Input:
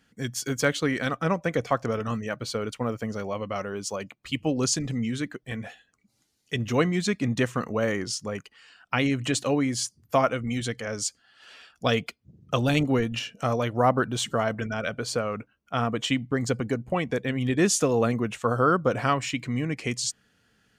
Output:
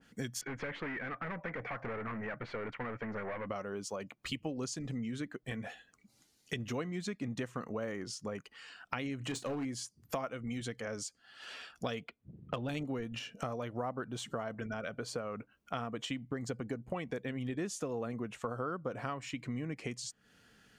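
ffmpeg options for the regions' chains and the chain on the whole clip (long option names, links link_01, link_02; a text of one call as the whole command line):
ffmpeg -i in.wav -filter_complex "[0:a]asettb=1/sr,asplit=3[link_01][link_02][link_03];[link_01]atrim=end=0.414[link_04];[link_02]atrim=start=0.41:end=3.49,asetpts=PTS-STARTPTS,afade=type=in:duration=0.004:curve=qsin,afade=type=out:start_time=3.076:duration=0.004:curve=qsin,equalizer=frequency=840:width=1.5:gain=3.5,aeval=exprs='(tanh(50.1*val(0)+0.1)-tanh(0.1))/50.1':channel_layout=same,lowpass=frequency=2000:width_type=q:width=3.5[link_05];[link_03]atrim=start=3.486[link_06];[link_04][link_05]acrossfade=duration=0.004:curve1=hsin:curve2=qsin[link_07];[link_07][link_06]acrossfade=duration=0.004:curve1=qsin:curve2=hsin,asettb=1/sr,asplit=3[link_08][link_09][link_10];[link_08]atrim=end=9.174[link_11];[link_09]atrim=start=9.17:end=9.65,asetpts=PTS-STARTPTS,afade=type=in:duration=0.004:curve=qsin,afade=type=out:start_time=0.476:duration=0.004:curve=qsin,asoftclip=type=hard:threshold=-21.5dB,asplit=2[link_12][link_13];[link_13]adelay=33,volume=-12dB[link_14];[link_12][link_14]amix=inputs=2:normalize=0,atrim=end_sample=21168[link_15];[link_10]atrim=start=9.646[link_16];[link_11][link_15]acrossfade=duration=0.004:curve1=hsin:curve2=qsin[link_17];[link_17][link_16]acrossfade=duration=0.004:curve1=qsin:curve2=hsin,asettb=1/sr,asplit=3[link_18][link_19][link_20];[link_18]atrim=end=12.044[link_21];[link_19]atrim=start=12.04:end=12.69,asetpts=PTS-STARTPTS,afade=type=in:duration=0.004:curve=qsin,afade=type=out:start_time=0.646:duration=0.004:curve=qsin,lowpass=frequency=4200:width=0.5412,lowpass=frequency=4200:width=1.3066,adynamicsmooth=sensitivity=2:basefreq=3300[link_22];[link_20]atrim=start=12.686[link_23];[link_21][link_22]acrossfade=duration=0.004:curve1=hsin:curve2=qsin[link_24];[link_24][link_23]acrossfade=duration=0.004:curve1=qsin:curve2=hsin,equalizer=frequency=87:width=1.5:gain=-4.5,acompressor=threshold=-39dB:ratio=5,adynamicequalizer=threshold=0.00158:dfrequency=1900:dqfactor=0.7:tfrequency=1900:tqfactor=0.7:attack=5:release=100:ratio=0.375:range=2.5:mode=cutabove:tftype=highshelf,volume=2.5dB" out.wav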